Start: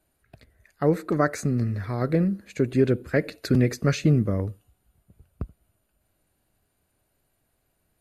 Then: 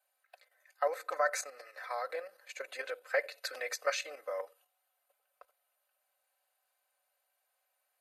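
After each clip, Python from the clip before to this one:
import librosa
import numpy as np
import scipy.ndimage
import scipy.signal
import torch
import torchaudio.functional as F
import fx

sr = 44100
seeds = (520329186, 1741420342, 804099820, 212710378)

y = scipy.signal.sosfilt(scipy.signal.ellip(4, 1.0, 60, 580.0, 'highpass', fs=sr, output='sos'), x)
y = y + 0.7 * np.pad(y, (int(3.9 * sr / 1000.0), 0))[:len(y)]
y = fx.level_steps(y, sr, step_db=9)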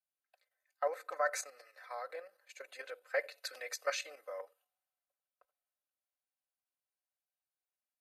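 y = fx.band_widen(x, sr, depth_pct=40)
y = y * 10.0 ** (-5.5 / 20.0)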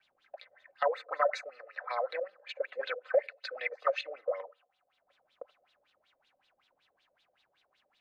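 y = fx.filter_lfo_lowpass(x, sr, shape='sine', hz=5.3, low_hz=500.0, high_hz=3900.0, q=6.3)
y = fx.band_squash(y, sr, depth_pct=70)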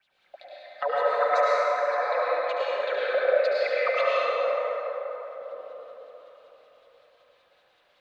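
y = x + 10.0 ** (-8.0 / 20.0) * np.pad(x, (int(72 * sr / 1000.0), 0))[:len(x)]
y = fx.rev_plate(y, sr, seeds[0], rt60_s=4.1, hf_ratio=0.45, predelay_ms=90, drr_db=-8.0)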